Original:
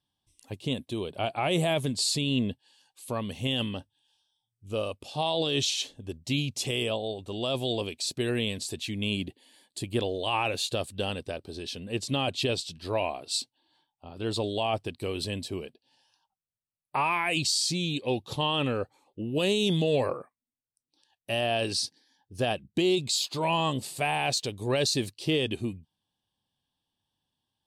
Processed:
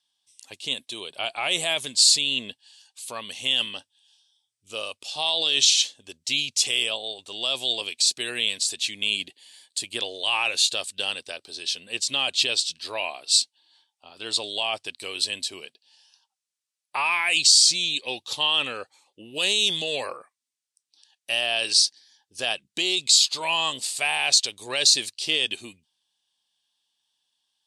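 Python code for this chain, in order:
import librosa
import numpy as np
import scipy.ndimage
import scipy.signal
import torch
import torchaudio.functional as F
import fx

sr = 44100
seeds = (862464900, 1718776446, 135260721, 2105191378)

y = fx.weighting(x, sr, curve='ITU-R 468')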